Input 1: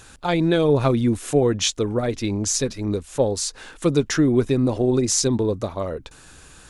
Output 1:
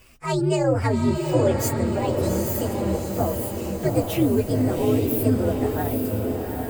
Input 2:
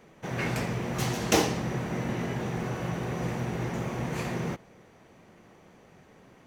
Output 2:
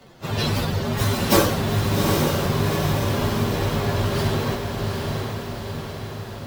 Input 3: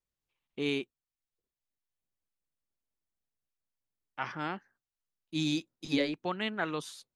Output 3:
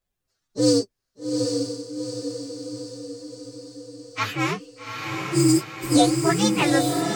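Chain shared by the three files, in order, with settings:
frequency axis rescaled in octaves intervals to 129%; echo that smears into a reverb 809 ms, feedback 58%, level -3.5 dB; normalise loudness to -23 LUFS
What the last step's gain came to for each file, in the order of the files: -1.0 dB, +11.0 dB, +14.5 dB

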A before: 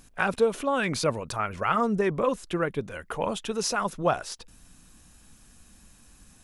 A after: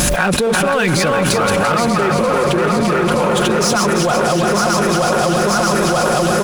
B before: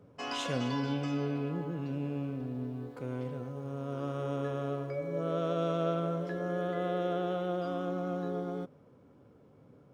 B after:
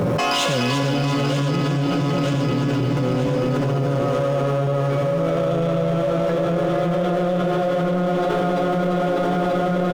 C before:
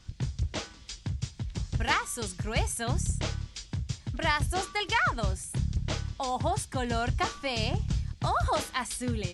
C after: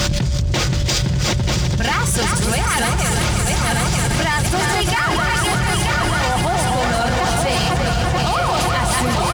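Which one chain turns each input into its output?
backward echo that repeats 467 ms, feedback 71%, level -3 dB; high-pass 52 Hz 12 dB/octave; comb 5.6 ms, depth 43%; power-law waveshaper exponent 0.7; whistle 580 Hz -52 dBFS; feedback delay 343 ms, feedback 57%, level -7 dB; level flattener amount 100%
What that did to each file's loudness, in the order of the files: +12.5 LU, +14.0 LU, +13.0 LU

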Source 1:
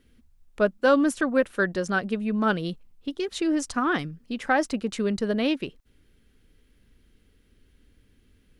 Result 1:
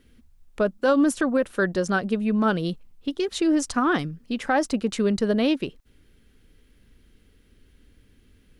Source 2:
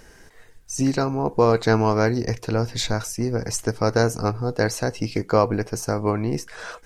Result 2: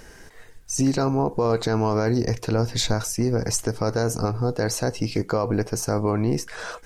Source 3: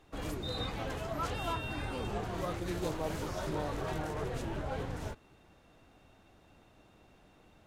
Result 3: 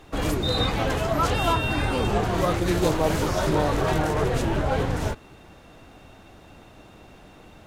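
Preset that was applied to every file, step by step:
dynamic bell 2.1 kHz, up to -4 dB, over -39 dBFS, Q 1.1; peak limiter -15.5 dBFS; normalise loudness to -24 LUFS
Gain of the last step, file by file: +3.5 dB, +3.0 dB, +13.5 dB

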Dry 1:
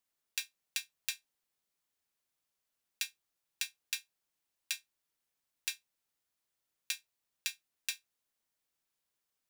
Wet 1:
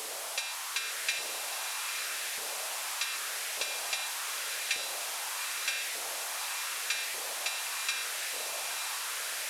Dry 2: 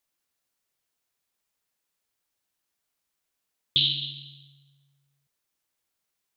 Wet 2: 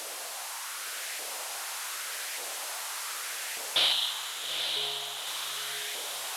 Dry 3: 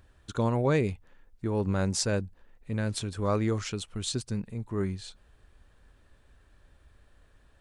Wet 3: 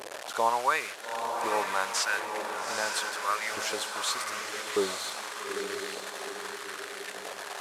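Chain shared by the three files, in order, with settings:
one-bit delta coder 64 kbps, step -34.5 dBFS; LFO high-pass saw up 0.84 Hz 460–2000 Hz; echo that smears into a reverb 866 ms, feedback 53%, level -4.5 dB; trim +3 dB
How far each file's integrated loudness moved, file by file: +8.0 LU, -6.5 LU, -1.0 LU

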